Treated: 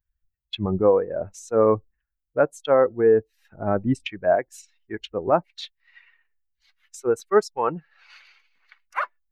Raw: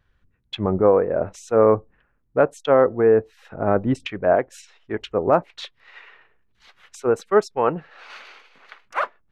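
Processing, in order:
spectral dynamics exaggerated over time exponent 1.5
high-shelf EQ 6,500 Hz +6.5 dB

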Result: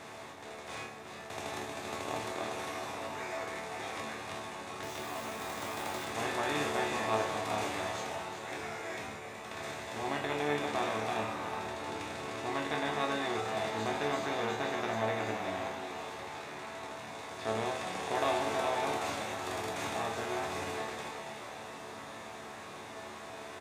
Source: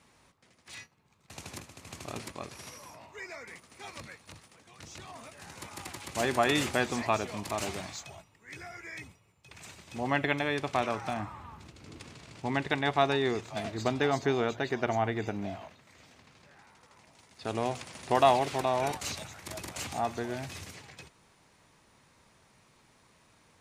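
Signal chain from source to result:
compressor on every frequency bin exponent 0.4
echo with shifted repeats 373 ms, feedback 52%, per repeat +75 Hz, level −8 dB
0:04.83–0:06.05: log-companded quantiser 4 bits
resonators tuned to a chord D2 major, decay 0.48 s
level +2.5 dB

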